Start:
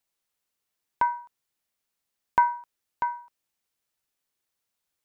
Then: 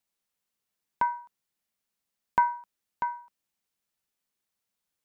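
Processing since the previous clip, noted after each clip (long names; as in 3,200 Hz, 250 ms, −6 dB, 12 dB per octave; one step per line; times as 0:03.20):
parametric band 200 Hz +7 dB 0.4 octaves
level −2.5 dB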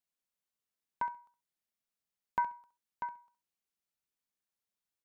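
repeating echo 67 ms, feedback 16%, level −12.5 dB
level −8.5 dB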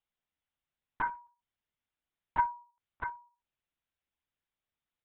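linear-prediction vocoder at 8 kHz whisper
level +3.5 dB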